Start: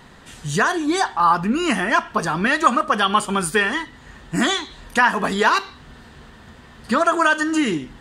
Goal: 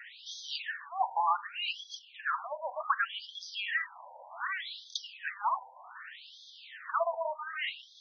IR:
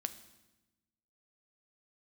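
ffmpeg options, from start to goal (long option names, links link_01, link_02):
-af "asubboost=boost=4:cutoff=140,acompressor=threshold=-30dB:ratio=6,afftfilt=real='re*between(b*sr/1024,700*pow(4600/700,0.5+0.5*sin(2*PI*0.66*pts/sr))/1.41,700*pow(4600/700,0.5+0.5*sin(2*PI*0.66*pts/sr))*1.41)':imag='im*between(b*sr/1024,700*pow(4600/700,0.5+0.5*sin(2*PI*0.66*pts/sr))/1.41,700*pow(4600/700,0.5+0.5*sin(2*PI*0.66*pts/sr))*1.41)':win_size=1024:overlap=0.75,volume=5.5dB"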